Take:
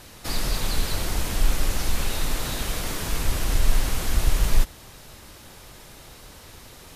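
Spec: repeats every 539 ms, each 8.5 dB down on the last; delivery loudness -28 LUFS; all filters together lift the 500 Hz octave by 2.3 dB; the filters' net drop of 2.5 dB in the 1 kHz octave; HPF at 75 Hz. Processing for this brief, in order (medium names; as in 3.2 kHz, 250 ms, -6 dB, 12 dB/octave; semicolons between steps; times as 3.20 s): high-pass 75 Hz; peaking EQ 500 Hz +4 dB; peaking EQ 1 kHz -4.5 dB; feedback delay 539 ms, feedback 38%, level -8.5 dB; trim +1 dB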